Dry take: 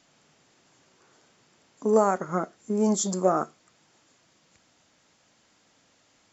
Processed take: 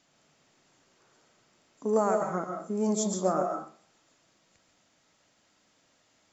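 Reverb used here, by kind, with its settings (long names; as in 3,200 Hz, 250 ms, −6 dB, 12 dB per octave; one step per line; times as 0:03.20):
comb and all-pass reverb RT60 0.47 s, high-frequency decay 0.6×, pre-delay 95 ms, DRR 4 dB
level −5 dB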